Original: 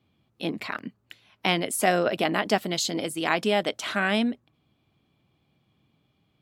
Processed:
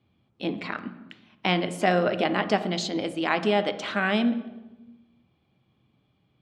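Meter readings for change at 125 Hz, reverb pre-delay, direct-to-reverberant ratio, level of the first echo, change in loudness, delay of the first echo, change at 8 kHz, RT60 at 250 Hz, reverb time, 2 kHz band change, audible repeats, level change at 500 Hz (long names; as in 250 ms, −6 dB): +2.5 dB, 3 ms, 10.0 dB, no echo audible, 0.0 dB, no echo audible, −10.0 dB, 1.5 s, 1.1 s, −0.5 dB, no echo audible, +0.5 dB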